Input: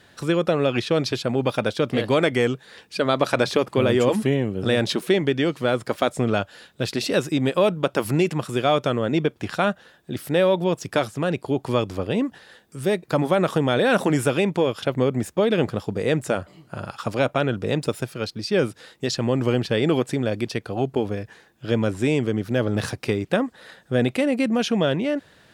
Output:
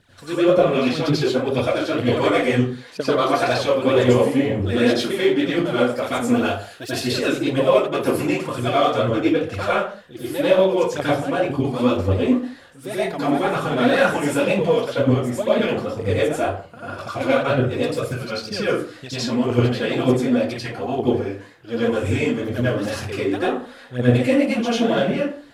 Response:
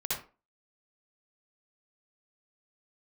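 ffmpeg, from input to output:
-filter_complex "[0:a]aphaser=in_gain=1:out_gain=1:delay=4.4:decay=0.76:speed=2:type=triangular,asettb=1/sr,asplit=3[a][b][c];[a]atrim=end=6.114[d];[b]atrim=start=6.11:end=7.02,asetpts=PTS-STARTPTS,afade=t=in:d=0.004:c=qsin,afade=t=out:st=0.906:d=0.004:c=qsin,highshelf=f=8.5k:g=11.5[e];[c]atrim=start=7.016[f];[d][e]acrossfade=d=0.004:c1=hsin:c2=qsin[g];[g][f]acrossfade=d=0.004:c1=qsin:c2=hsin[h];[1:a]atrim=start_sample=2205,afade=t=out:st=0.25:d=0.01,atrim=end_sample=11466,asetrate=28665,aresample=44100[i];[h][i]afir=irnorm=-1:irlink=0,volume=-9.5dB"

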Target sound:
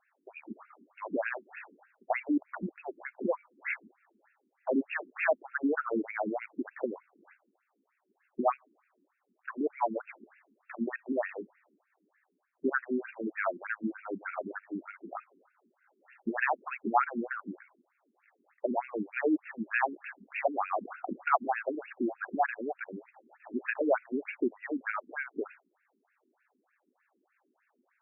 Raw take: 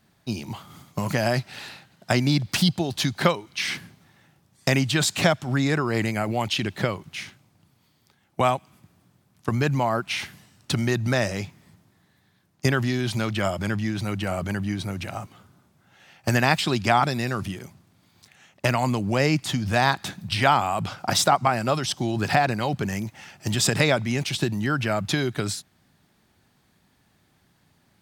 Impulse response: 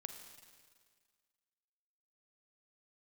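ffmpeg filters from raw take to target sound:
-af "aeval=exprs='0.398*(abs(mod(val(0)/0.398+3,4)-2)-1)':c=same,afftfilt=real='re*between(b*sr/1024,290*pow(2000/290,0.5+0.5*sin(2*PI*3.3*pts/sr))/1.41,290*pow(2000/290,0.5+0.5*sin(2*PI*3.3*pts/sr))*1.41)':imag='im*between(b*sr/1024,290*pow(2000/290,0.5+0.5*sin(2*PI*3.3*pts/sr))/1.41,290*pow(2000/290,0.5+0.5*sin(2*PI*3.3*pts/sr))*1.41)':win_size=1024:overlap=0.75,volume=-1.5dB"

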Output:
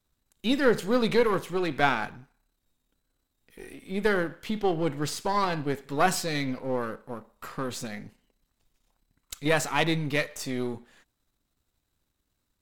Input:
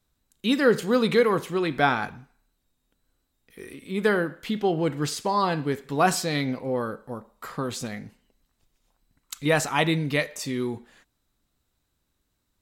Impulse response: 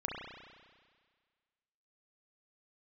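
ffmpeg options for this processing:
-af "aeval=exprs='if(lt(val(0),0),0.447*val(0),val(0))':c=same"

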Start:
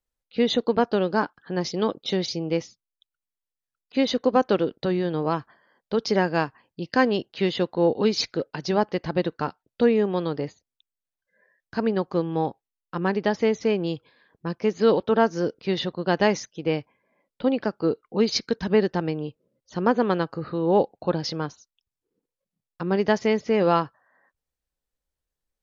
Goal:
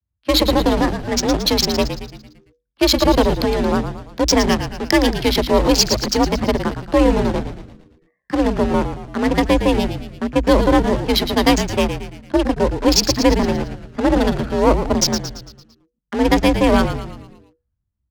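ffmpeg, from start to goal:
-filter_complex "[0:a]aemphasis=mode=production:type=50fm,bandreject=f=60:t=h:w=6,bandreject=f=120:t=h:w=6,bandreject=f=180:t=h:w=6,bandreject=f=240:t=h:w=6,adynamicequalizer=threshold=0.00708:dfrequency=1000:dqfactor=6.4:tfrequency=1000:tqfactor=6.4:attack=5:release=100:ratio=0.375:range=2:mode=cutabove:tftype=bell,acrossover=split=240|780|1800[a][b][c][d];[b]acrusher=bits=3:dc=4:mix=0:aa=0.000001[e];[c]acompressor=threshold=-45dB:ratio=5[f];[a][e][f][d]amix=inputs=4:normalize=0,atempo=1.3,adynamicsmooth=sensitivity=5.5:basefreq=640,afreqshift=46,asplit=7[g][h][i][j][k][l][m];[h]adelay=123,afreqshift=-82,volume=-9dB[n];[i]adelay=246,afreqshift=-164,volume=-14.8dB[o];[j]adelay=369,afreqshift=-246,volume=-20.7dB[p];[k]adelay=492,afreqshift=-328,volume=-26.5dB[q];[l]adelay=615,afreqshift=-410,volume=-32.4dB[r];[m]adelay=738,afreqshift=-492,volume=-38.2dB[s];[g][n][o][p][q][r][s]amix=inputs=7:normalize=0,asetrate=48000,aresample=44100,alimiter=level_in=11dB:limit=-1dB:release=50:level=0:latency=1,volume=-1dB"

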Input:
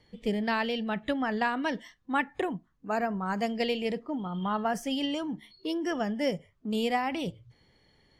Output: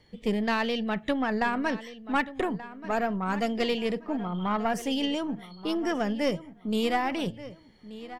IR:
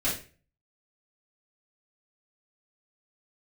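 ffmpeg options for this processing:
-filter_complex "[0:a]asettb=1/sr,asplit=3[a][b][c];[a]atrim=end=1.274[d];[b]atrim=start=1.27:end=1.7,asetpts=PTS-STARTPTS,afade=t=in:d=0.004:c=qsin,afade=t=out:st=0.426:d=0.004:c=qsin,asuperstop=centerf=3300:order=4:qfactor=2.5[e];[c]atrim=start=1.696[f];[d][e]acrossfade=d=0.004:c1=hsin:c2=qsin[g];[g][f]acrossfade=d=0.004:c1=qsin:c2=hsin,aeval=exprs='0.188*(cos(1*acos(clip(val(0)/0.188,-1,1)))-cos(1*PI/2))+0.0531*(cos(2*acos(clip(val(0)/0.188,-1,1)))-cos(2*PI/2))+0.00335*(cos(6*acos(clip(val(0)/0.188,-1,1)))-cos(6*PI/2))':c=same,asplit=2[h][i];[i]asoftclip=type=tanh:threshold=-26dB,volume=-6dB[j];[h][j]amix=inputs=2:normalize=0,asplit=2[k][l];[l]adelay=1181,lowpass=f=4.4k:p=1,volume=-15dB,asplit=2[m][n];[n]adelay=1181,lowpass=f=4.4k:p=1,volume=0.3,asplit=2[o][p];[p]adelay=1181,lowpass=f=4.4k:p=1,volume=0.3[q];[k][m][o][q]amix=inputs=4:normalize=0,volume=-1dB"

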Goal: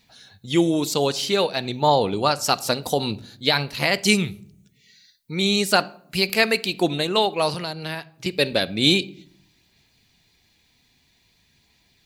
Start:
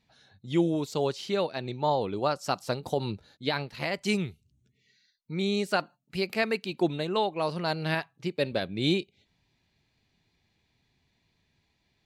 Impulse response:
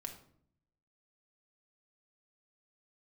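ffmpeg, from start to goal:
-filter_complex "[0:a]aphaser=in_gain=1:out_gain=1:delay=4:decay=0.21:speed=0.51:type=sinusoidal,crystalizer=i=4:c=0,asettb=1/sr,asplit=3[a][b][c];[a]atrim=end=7.544[d];[b]atrim=start=7.54:end=8.26,asetpts=PTS-STARTPTS,afade=t=in:d=0.004:c=qsin,afade=t=out:st=0.716:d=0.004:c=qsin,acrossover=split=260|1300[e][f][g];[e]acompressor=threshold=-42dB:ratio=4[h];[f]acompressor=threshold=-39dB:ratio=4[i];[g]acompressor=threshold=-38dB:ratio=4[j];[h][i][j]amix=inputs=3:normalize=0[k];[c]atrim=start=8.256[l];[d][k]acrossfade=d=0.004:c1=hsin:c2=qsin[m];[m][l]acrossfade=d=0.004:c1=qsin:c2=hsin,asplit=2[n][o];[1:a]atrim=start_sample=2205,lowpass=5.7k[p];[o][p]afir=irnorm=-1:irlink=0,volume=-6dB[q];[n][q]amix=inputs=2:normalize=0,volume=3.5dB"

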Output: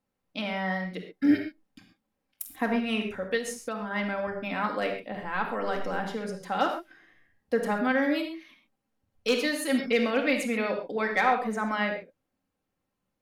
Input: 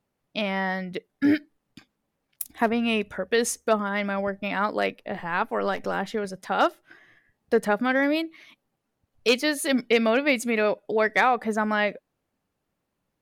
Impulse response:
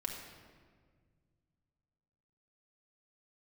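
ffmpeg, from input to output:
-filter_complex "[1:a]atrim=start_sample=2205,afade=t=out:st=0.19:d=0.01,atrim=end_sample=8820[a];[0:a][a]afir=irnorm=-1:irlink=0,asettb=1/sr,asplit=3[b][c][d];[b]atrim=end=3.374[e];[c]atrim=start=3.37:end=3.91,asetpts=PTS-STARTPTS,afade=t=in:d=0.004:c=qsin,afade=t=out:st=0.536:d=0.004:c=qsin,acompressor=threshold=-27dB:ratio=4[f];[d]atrim=start=3.906[g];[e][f]acrossfade=d=0.004:c1=hsin:c2=qsin[h];[h][g]acrossfade=d=0.004:c1=qsin:c2=hsin,volume=-4dB"

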